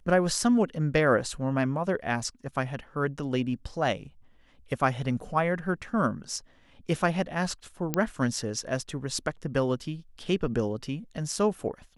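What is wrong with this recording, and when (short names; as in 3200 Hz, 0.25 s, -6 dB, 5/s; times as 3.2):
7.94 pop -10 dBFS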